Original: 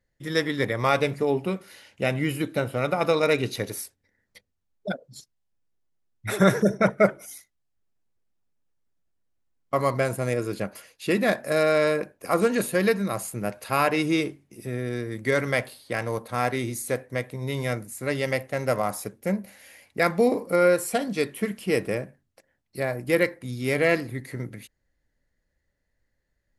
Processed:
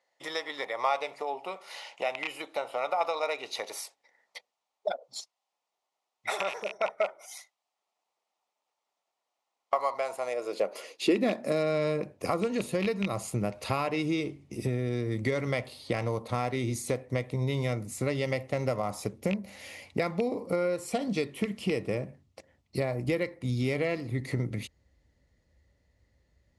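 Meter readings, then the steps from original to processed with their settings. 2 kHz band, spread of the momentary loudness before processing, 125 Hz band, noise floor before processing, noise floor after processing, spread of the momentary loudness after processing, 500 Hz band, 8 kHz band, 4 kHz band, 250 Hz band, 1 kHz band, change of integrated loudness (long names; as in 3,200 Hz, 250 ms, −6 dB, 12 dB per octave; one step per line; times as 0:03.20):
−8.5 dB, 13 LU, −3.0 dB, −76 dBFS, below −85 dBFS, 10 LU, −6.5 dB, −6.0 dB, −4.0 dB, −5.5 dB, −4.5 dB, −6.0 dB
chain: loose part that buzzes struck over −25 dBFS, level −13 dBFS
parametric band 1,600 Hz −14 dB 0.26 octaves
downward compressor 6 to 1, threshold −35 dBFS, peak gain reduction 20.5 dB
low-pass filter 6,900 Hz 12 dB per octave
high-pass filter sweep 780 Hz → 65 Hz, 0:10.21–0:12.60
level +7.5 dB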